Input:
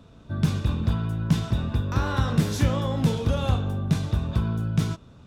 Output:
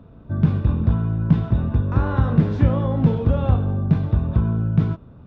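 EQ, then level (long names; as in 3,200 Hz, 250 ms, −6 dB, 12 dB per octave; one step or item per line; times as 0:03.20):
head-to-tape spacing loss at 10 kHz 43 dB
high-shelf EQ 4,200 Hz −5 dB
+6.0 dB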